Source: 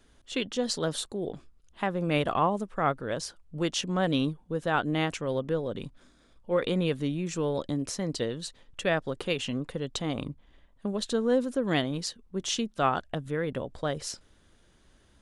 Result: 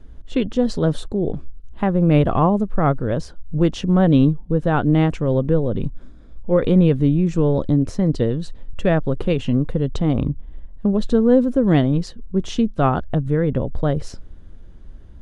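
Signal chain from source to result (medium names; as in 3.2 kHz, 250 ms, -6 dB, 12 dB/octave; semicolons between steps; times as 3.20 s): tilt EQ -4 dB/octave; trim +5 dB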